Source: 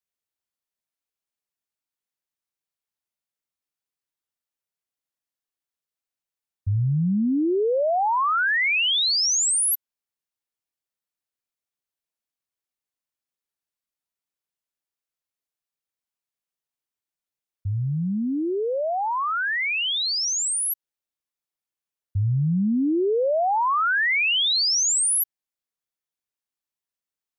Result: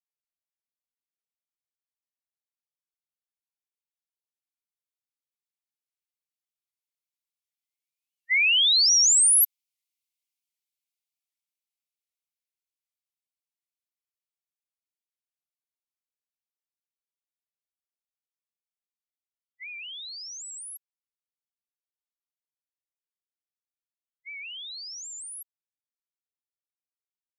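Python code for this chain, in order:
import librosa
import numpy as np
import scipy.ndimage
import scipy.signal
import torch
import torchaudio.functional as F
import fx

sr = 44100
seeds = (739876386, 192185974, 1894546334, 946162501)

y = fx.doppler_pass(x, sr, speed_mps=12, closest_m=15.0, pass_at_s=9.58)
y = fx.brickwall_highpass(y, sr, low_hz=2000.0)
y = fx.record_warp(y, sr, rpm=78.0, depth_cents=160.0)
y = y * librosa.db_to_amplitude(3.5)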